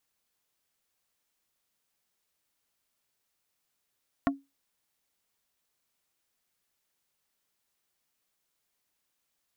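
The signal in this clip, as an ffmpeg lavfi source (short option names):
-f lavfi -i "aevalsrc='0.1*pow(10,-3*t/0.22)*sin(2*PI*276*t)+0.0794*pow(10,-3*t/0.073)*sin(2*PI*690*t)+0.0631*pow(10,-3*t/0.042)*sin(2*PI*1104*t)+0.0501*pow(10,-3*t/0.032)*sin(2*PI*1380*t)+0.0398*pow(10,-3*t/0.023)*sin(2*PI*1794*t)':d=0.45:s=44100"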